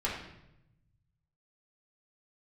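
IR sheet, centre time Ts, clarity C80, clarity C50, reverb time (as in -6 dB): 44 ms, 6.5 dB, 3.0 dB, 0.85 s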